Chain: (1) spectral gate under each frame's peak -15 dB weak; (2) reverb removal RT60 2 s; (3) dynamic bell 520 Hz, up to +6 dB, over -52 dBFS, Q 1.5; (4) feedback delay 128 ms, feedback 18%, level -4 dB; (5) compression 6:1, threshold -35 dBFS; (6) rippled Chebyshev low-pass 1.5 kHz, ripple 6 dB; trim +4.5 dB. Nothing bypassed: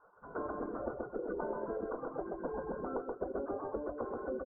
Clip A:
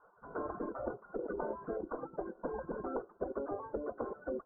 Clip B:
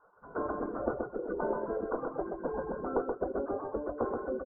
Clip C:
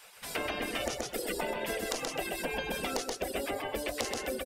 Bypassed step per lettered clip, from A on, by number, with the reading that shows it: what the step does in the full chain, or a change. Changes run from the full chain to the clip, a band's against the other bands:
4, loudness change -1.0 LU; 5, mean gain reduction 3.5 dB; 6, 2 kHz band +11.5 dB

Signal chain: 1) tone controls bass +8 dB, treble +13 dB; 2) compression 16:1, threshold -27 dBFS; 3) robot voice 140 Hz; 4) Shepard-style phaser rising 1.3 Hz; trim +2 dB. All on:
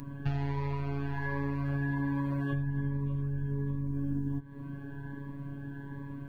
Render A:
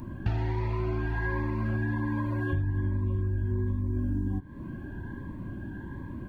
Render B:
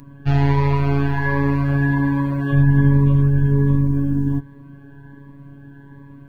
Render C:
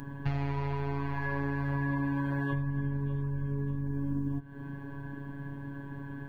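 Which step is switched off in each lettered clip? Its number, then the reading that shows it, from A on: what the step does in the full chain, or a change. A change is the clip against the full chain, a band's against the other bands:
3, 250 Hz band -2.0 dB; 2, mean gain reduction 10.5 dB; 4, 125 Hz band -2.5 dB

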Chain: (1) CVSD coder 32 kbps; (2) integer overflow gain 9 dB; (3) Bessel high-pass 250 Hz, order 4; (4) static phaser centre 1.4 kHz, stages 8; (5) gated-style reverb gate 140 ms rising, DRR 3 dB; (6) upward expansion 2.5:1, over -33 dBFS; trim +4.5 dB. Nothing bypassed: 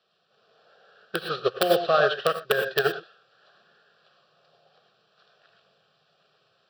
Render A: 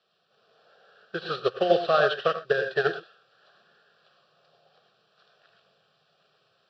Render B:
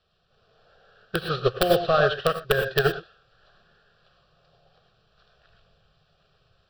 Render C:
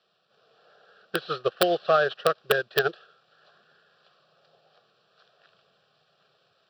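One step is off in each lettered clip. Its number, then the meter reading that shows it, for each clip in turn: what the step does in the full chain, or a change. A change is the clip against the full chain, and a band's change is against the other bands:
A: 2, distortion -12 dB; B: 3, 125 Hz band +10.0 dB; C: 5, crest factor change +2.0 dB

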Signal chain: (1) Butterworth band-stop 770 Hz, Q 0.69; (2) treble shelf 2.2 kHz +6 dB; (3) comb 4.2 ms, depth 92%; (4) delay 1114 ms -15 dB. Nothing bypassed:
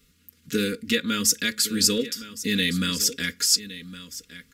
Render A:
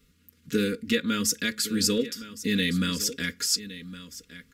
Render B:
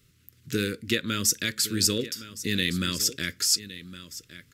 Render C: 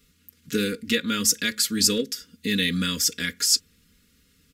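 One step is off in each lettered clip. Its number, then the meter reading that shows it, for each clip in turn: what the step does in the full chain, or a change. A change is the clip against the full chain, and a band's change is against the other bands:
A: 2, 8 kHz band -4.5 dB; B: 3, 125 Hz band +3.5 dB; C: 4, momentary loudness spread change -10 LU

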